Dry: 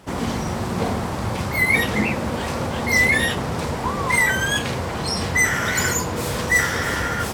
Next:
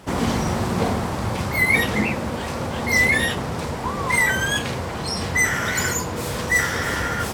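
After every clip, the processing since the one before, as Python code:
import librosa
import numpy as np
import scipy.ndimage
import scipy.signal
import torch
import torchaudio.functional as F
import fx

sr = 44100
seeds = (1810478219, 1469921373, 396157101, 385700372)

y = fx.rider(x, sr, range_db=10, speed_s=2.0)
y = y * 10.0 ** (-2.0 / 20.0)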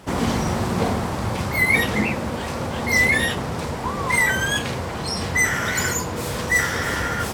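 y = x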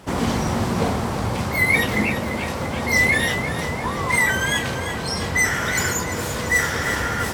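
y = fx.echo_feedback(x, sr, ms=343, feedback_pct=55, wet_db=-10.5)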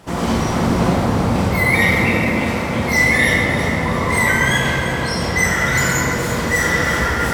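y = fx.room_shoebox(x, sr, seeds[0], volume_m3=200.0, walls='hard', distance_m=0.75)
y = y * 10.0 ** (-1.0 / 20.0)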